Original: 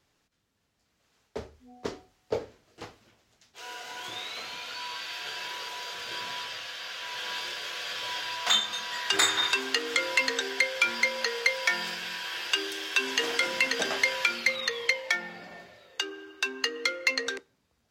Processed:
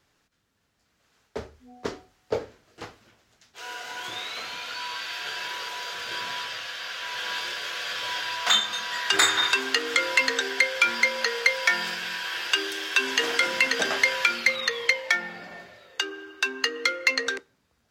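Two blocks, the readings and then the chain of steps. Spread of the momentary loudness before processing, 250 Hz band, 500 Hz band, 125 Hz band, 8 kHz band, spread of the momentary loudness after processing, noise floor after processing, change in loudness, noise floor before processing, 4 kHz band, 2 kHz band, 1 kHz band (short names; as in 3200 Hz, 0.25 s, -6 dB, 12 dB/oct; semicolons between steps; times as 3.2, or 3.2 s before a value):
16 LU, +2.5 dB, +2.5 dB, n/a, +2.5 dB, 16 LU, -71 dBFS, +3.5 dB, -74 dBFS, +3.0 dB, +4.0 dB, +4.5 dB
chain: bell 1500 Hz +3.5 dB 0.77 oct; gain +2.5 dB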